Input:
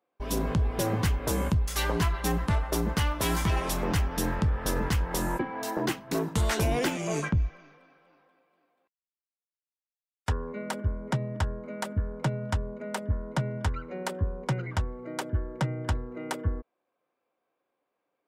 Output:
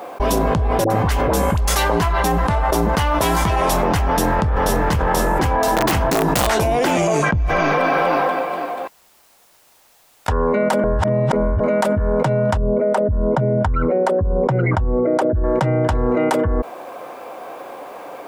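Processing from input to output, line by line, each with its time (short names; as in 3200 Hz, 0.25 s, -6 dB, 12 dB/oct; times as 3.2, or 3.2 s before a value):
0.84–1.67 dispersion highs, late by 61 ms, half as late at 830 Hz
4.05–5.05 echo throw 0.51 s, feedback 35%, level -0.5 dB
5.65–6.47 wrapped overs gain 20 dB
10.84–11.6 reverse
12.57–15.44 formant sharpening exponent 1.5
whole clip: bell 750 Hz +9 dB 1.4 oct; fast leveller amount 100%; gain +1.5 dB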